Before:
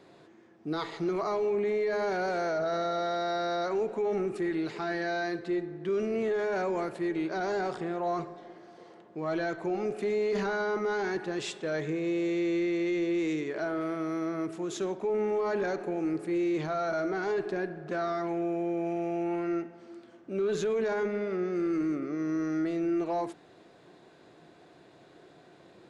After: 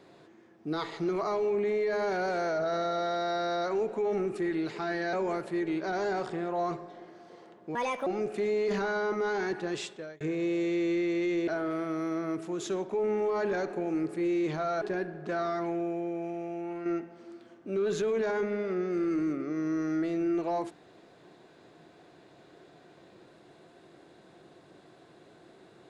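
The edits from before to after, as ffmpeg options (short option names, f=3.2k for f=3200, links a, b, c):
-filter_complex "[0:a]asplit=8[a][b][c][d][e][f][g][h];[a]atrim=end=5.132[i];[b]atrim=start=6.608:end=9.234[j];[c]atrim=start=9.23:end=9.71,asetpts=PTS-STARTPTS,asetrate=67032,aresample=44100,atrim=end_sample=13926,asetpts=PTS-STARTPTS[k];[d]atrim=start=9.706:end=11.85,asetpts=PTS-STARTPTS,afade=t=out:st=1.684:d=0.46[l];[e]atrim=start=11.85:end=13.122,asetpts=PTS-STARTPTS,afade=t=in:d=0.004:c=hsin[m];[f]atrim=start=13.578:end=16.922[n];[g]atrim=start=17.438:end=19.48,asetpts=PTS-STARTPTS,afade=t=out:st=0.842:d=1.2:c=qua:silence=0.501187[o];[h]atrim=start=19.48,asetpts=PTS-STARTPTS,afade=t=in:d=0.004:c=hsin:silence=0.501187[p];[i][j]acrossfade=d=0.004:c1=hsin:c2=hsin[q];[q][k]acrossfade=d=0.004:c1=hsin:c2=hsin[r];[l][m]concat=n=2:v=0:a=1[s];[r][s]acrossfade=d=0.004:c1=hsin:c2=hsin[t];[t][n]acrossfade=d=0.004:c1=hsin:c2=hsin[u];[o][p]concat=n=2:v=0:a=1[v];[u][v]acrossfade=d=0.004:c1=hsin:c2=hsin"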